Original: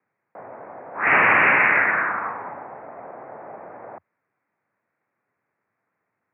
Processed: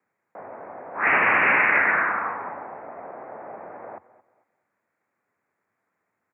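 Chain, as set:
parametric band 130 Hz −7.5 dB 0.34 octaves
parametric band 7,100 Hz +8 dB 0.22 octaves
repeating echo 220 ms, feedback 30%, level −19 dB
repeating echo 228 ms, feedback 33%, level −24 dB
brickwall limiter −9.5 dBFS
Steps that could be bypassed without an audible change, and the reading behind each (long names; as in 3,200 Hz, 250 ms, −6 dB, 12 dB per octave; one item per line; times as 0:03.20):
parametric band 7,100 Hz: nothing at its input above 3,000 Hz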